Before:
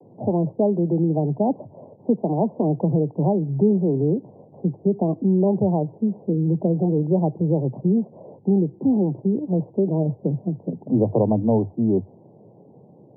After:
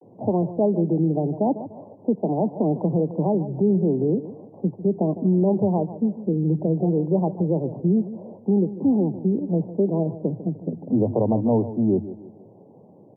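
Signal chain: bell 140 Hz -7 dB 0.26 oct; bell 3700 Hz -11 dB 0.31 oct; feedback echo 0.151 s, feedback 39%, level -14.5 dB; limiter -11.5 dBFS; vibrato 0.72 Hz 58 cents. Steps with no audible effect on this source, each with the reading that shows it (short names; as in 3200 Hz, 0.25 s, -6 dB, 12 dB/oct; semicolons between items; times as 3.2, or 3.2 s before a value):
bell 3700 Hz: input band ends at 910 Hz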